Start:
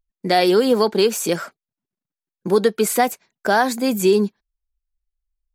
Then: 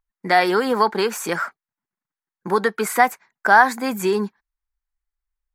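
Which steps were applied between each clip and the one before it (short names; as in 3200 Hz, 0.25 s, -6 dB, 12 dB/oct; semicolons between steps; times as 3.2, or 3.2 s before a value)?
band shelf 1300 Hz +12 dB; gain -5 dB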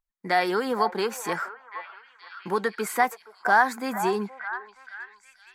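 delay with a stepping band-pass 0.473 s, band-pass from 830 Hz, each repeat 0.7 oct, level -8 dB; gain -6.5 dB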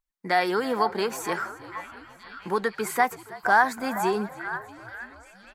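frequency-shifting echo 0.324 s, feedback 62%, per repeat -46 Hz, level -19 dB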